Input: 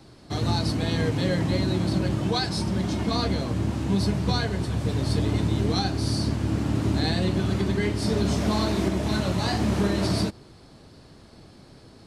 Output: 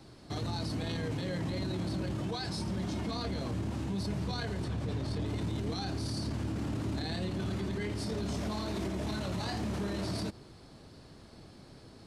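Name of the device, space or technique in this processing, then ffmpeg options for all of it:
stacked limiters: -filter_complex "[0:a]asettb=1/sr,asplit=3[s0][s1][s2];[s0]atrim=end=4.644[s3];[s1]atrim=start=4.64:end=5.26,asetpts=PTS-STARTPTS,afade=t=in:d=0.004:c=qsin,afade=t=out:st=0.616:d=0.004:c=qsin,highshelf=f=7700:g=-11[s4];[s2]atrim=start=5.256[s5];[s3][s4]acrossfade=d=0.004:c1=hsin:c2=qsin[s6];[s6][s5]acrossfade=d=0.004:c1=qsin:c2=hsin,alimiter=limit=0.112:level=0:latency=1:release=11,alimiter=limit=0.0631:level=0:latency=1:release=55,volume=0.668"

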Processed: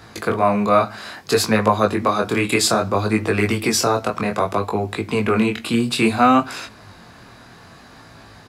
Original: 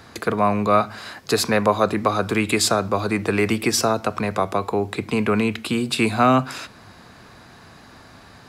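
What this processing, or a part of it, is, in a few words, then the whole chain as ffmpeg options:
double-tracked vocal: -filter_complex "[0:a]asplit=2[s0][s1];[s1]adelay=18,volume=0.211[s2];[s0][s2]amix=inputs=2:normalize=0,flanger=delay=18:depth=7.6:speed=0.61,volume=1.68"

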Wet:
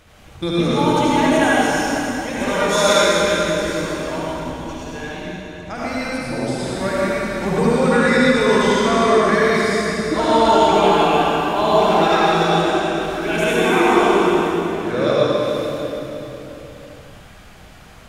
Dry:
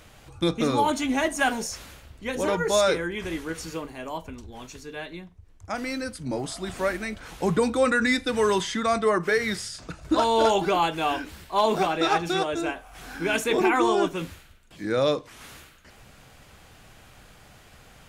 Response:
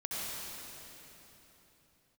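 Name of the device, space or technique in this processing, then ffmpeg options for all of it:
swimming-pool hall: -filter_complex "[0:a]asettb=1/sr,asplit=3[s0][s1][s2];[s0]atrim=end=2.434[s3];[s1]atrim=start=2.43:end=3.06,asetpts=PTS-STARTPTS,afade=t=in:d=0.004:c=qsin,afade=t=out:st=0.626:d=0.004:c=qsin,tiltshelf=f=740:g=-5.5[s4];[s2]atrim=start=3.056[s5];[s3][s4]acrossfade=d=0.004:c1=hsin:c2=qsin[s6];[s6][s5]acrossfade=d=0.004:c1=qsin:c2=hsin[s7];[1:a]atrim=start_sample=2205[s8];[s7][s8]afir=irnorm=-1:irlink=0,highshelf=f=5500:g=-4.5,volume=1.58"

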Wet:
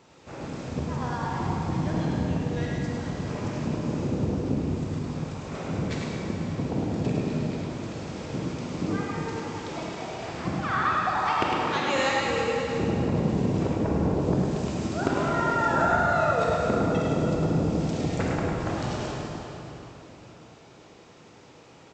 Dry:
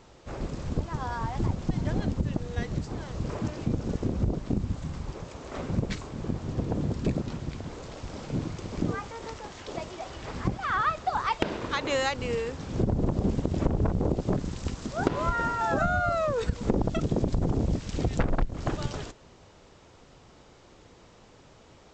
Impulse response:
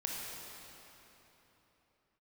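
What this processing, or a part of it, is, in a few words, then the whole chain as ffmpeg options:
PA in a hall: -filter_complex "[0:a]highpass=110,equalizer=f=2500:t=o:w=0.21:g=3,aecho=1:1:104:0.562[s0];[1:a]atrim=start_sample=2205[s1];[s0][s1]afir=irnorm=-1:irlink=0"

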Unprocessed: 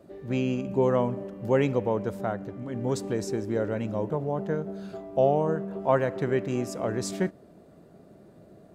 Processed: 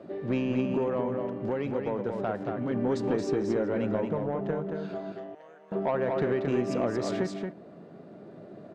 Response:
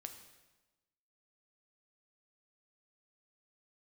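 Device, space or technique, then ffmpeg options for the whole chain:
AM radio: -filter_complex "[0:a]highpass=150,lowpass=3500,acompressor=threshold=0.0316:ratio=8,asoftclip=type=tanh:threshold=0.0501,tremolo=f=0.32:d=0.3,asettb=1/sr,asplit=3[s0][s1][s2];[s0]atrim=end=5.124[s3];[s1]atrim=start=5.12:end=5.72,asetpts=PTS-STARTPTS,afade=t=in:d=0.004:c=qsin,afade=t=out:st=0.596:d=0.004:c=qsin,aderivative[s4];[s2]atrim=start=5.716[s5];[s3][s4]acrossfade=d=0.004:c1=hsin:c2=qsin[s6];[s6][s5]acrossfade=d=0.004:c1=qsin:c2=hsin,aecho=1:1:227:0.562,volume=2.37"

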